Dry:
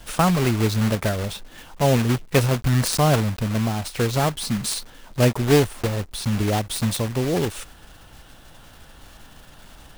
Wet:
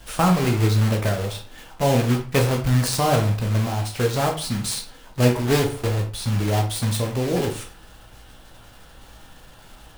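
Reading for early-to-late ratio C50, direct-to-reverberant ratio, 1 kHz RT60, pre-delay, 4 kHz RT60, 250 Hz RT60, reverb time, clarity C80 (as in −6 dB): 9.0 dB, 1.5 dB, 0.40 s, 11 ms, 0.30 s, 0.45 s, 0.40 s, 14.0 dB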